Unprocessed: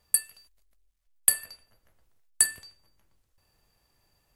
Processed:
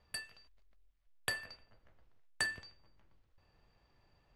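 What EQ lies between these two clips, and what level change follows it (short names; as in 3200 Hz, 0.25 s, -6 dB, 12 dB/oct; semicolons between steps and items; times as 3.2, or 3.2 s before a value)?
dynamic EQ 6100 Hz, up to +5 dB, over -45 dBFS, Q 3; air absorption 210 m; +1.5 dB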